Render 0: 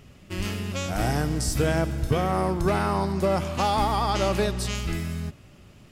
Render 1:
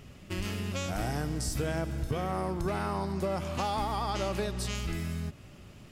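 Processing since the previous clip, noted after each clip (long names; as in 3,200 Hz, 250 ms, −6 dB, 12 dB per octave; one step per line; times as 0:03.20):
downward compressor 2.5 to 1, threshold −32 dBFS, peak gain reduction 9.5 dB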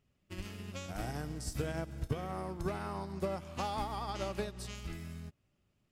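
expander for the loud parts 2.5 to 1, over −44 dBFS
level −1 dB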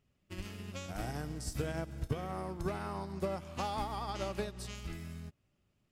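no processing that can be heard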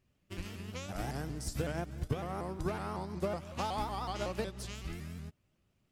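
pitch modulation by a square or saw wave saw up 5.4 Hz, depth 160 cents
level +1 dB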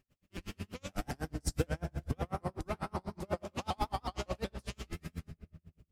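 single-tap delay 71 ms −12.5 dB
on a send at −9.5 dB: convolution reverb RT60 2.1 s, pre-delay 4 ms
on the sum: tremolo with a sine in dB 8.1 Hz, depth 38 dB
level +5.5 dB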